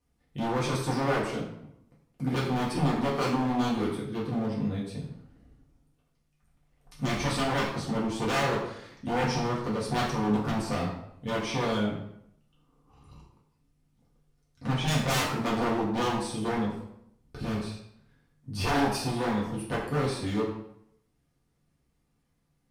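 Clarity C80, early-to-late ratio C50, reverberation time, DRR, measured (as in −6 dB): 6.5 dB, 4.0 dB, 0.75 s, −6.0 dB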